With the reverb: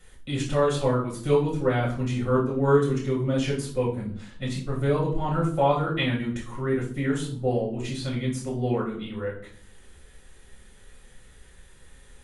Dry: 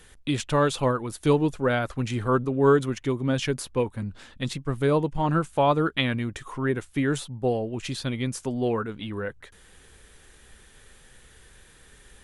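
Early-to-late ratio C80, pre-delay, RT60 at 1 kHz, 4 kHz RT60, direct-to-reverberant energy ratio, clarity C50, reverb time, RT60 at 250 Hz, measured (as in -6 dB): 12.0 dB, 5 ms, 0.50 s, 0.35 s, -4.5 dB, 7.0 dB, 0.55 s, 0.85 s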